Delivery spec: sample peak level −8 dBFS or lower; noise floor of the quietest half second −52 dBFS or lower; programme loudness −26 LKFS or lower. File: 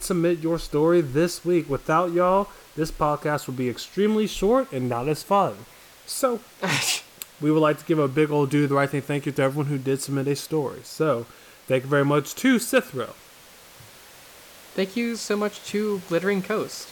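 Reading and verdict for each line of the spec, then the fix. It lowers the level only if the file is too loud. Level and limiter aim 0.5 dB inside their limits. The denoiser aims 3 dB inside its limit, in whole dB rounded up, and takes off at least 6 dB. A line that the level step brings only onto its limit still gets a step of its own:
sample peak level −7.0 dBFS: out of spec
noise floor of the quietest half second −49 dBFS: out of spec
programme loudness −24.0 LKFS: out of spec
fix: broadband denoise 6 dB, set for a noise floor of −49 dBFS
level −2.5 dB

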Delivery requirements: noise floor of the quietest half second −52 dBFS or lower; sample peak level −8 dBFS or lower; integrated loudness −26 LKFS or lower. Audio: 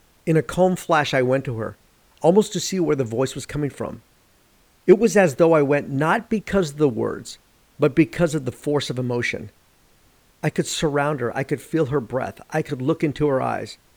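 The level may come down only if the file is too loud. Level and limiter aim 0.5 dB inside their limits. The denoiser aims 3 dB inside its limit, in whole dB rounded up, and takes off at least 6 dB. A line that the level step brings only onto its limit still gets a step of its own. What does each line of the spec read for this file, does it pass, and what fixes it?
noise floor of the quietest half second −58 dBFS: in spec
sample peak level −3.0 dBFS: out of spec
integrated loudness −21.5 LKFS: out of spec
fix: level −5 dB
brickwall limiter −8.5 dBFS

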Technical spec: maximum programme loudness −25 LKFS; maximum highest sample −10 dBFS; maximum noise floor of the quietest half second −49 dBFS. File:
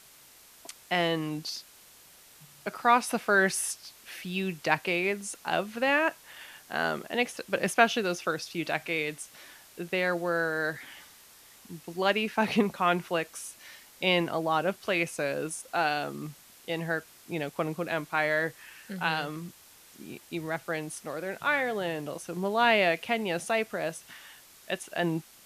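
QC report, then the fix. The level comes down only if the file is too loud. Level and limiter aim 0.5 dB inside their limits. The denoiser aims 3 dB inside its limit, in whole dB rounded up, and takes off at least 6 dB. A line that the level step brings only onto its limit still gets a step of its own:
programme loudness −29.0 LKFS: in spec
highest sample −7.0 dBFS: out of spec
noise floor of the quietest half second −55 dBFS: in spec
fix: brickwall limiter −10.5 dBFS

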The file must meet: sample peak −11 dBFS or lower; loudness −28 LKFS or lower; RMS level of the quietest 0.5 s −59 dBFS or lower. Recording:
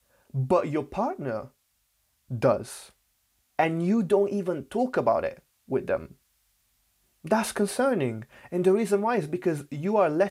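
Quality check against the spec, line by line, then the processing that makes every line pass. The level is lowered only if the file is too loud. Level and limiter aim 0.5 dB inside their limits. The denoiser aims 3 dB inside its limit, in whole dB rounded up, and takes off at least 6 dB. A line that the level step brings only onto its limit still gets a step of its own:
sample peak −10.0 dBFS: out of spec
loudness −26.5 LKFS: out of spec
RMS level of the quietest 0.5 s −72 dBFS: in spec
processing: level −2 dB

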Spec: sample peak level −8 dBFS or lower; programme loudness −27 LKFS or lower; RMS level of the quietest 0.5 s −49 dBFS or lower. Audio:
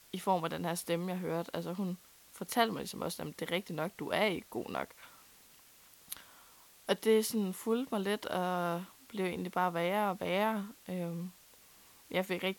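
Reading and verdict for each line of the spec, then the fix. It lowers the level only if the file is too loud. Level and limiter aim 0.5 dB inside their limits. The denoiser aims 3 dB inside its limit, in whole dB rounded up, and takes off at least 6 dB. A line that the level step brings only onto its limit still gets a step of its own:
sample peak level −15.5 dBFS: in spec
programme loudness −35.0 LKFS: in spec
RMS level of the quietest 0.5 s −60 dBFS: in spec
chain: no processing needed

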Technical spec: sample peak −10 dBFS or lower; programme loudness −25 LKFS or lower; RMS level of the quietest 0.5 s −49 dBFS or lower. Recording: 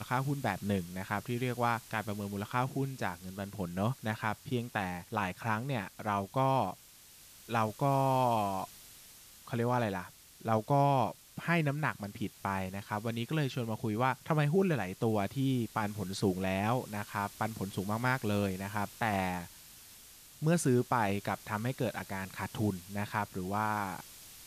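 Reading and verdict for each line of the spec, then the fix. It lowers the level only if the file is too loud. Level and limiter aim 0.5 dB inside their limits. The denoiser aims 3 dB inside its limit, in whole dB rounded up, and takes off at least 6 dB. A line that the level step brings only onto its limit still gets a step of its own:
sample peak −17.5 dBFS: in spec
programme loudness −33.5 LKFS: in spec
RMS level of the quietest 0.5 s −56 dBFS: in spec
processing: no processing needed

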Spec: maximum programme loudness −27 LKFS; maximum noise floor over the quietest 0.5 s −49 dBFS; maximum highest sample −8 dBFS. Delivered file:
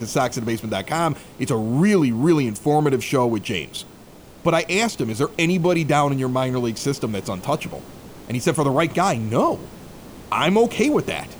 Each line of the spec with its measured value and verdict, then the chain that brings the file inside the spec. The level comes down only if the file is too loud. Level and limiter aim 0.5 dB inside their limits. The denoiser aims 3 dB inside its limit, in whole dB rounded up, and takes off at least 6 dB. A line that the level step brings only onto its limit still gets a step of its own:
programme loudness −21.0 LKFS: out of spec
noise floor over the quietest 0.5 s −44 dBFS: out of spec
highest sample −5.0 dBFS: out of spec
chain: level −6.5 dB

